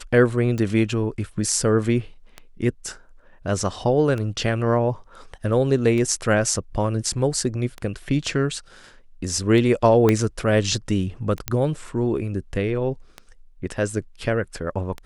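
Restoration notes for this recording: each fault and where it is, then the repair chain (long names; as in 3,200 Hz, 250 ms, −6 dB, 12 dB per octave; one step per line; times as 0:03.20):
scratch tick 33 1/3 rpm −17 dBFS
0:10.09: click −6 dBFS
0:11.48: click −6 dBFS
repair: click removal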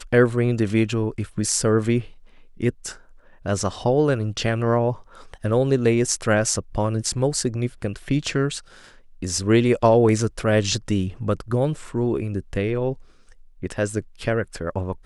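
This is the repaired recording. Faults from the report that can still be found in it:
0:10.09: click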